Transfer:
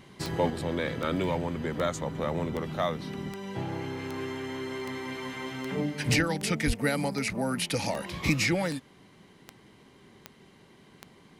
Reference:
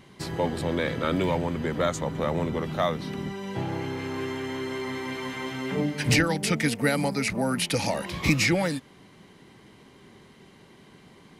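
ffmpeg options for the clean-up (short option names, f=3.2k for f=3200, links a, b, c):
-filter_complex "[0:a]adeclick=t=4,asplit=3[a][b][c];[a]afade=t=out:st=6.66:d=0.02[d];[b]highpass=f=140:w=0.5412,highpass=f=140:w=1.3066,afade=t=in:st=6.66:d=0.02,afade=t=out:st=6.78:d=0.02[e];[c]afade=t=in:st=6.78:d=0.02[f];[d][e][f]amix=inputs=3:normalize=0,asetnsamples=n=441:p=0,asendcmd='0.5 volume volume 3.5dB',volume=0dB"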